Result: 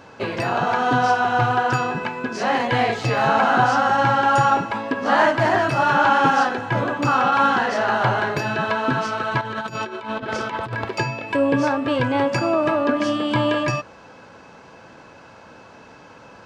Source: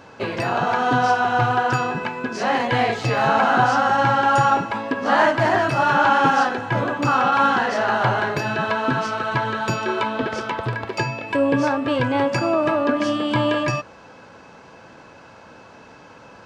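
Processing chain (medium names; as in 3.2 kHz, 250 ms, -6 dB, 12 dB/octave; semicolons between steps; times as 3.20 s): 9.41–10.89 s: compressor with a negative ratio -27 dBFS, ratio -0.5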